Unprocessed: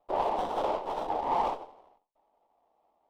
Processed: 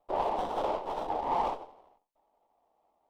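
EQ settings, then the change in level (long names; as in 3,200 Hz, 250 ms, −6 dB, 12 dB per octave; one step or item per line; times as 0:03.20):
low-shelf EQ 150 Hz +3 dB
−1.5 dB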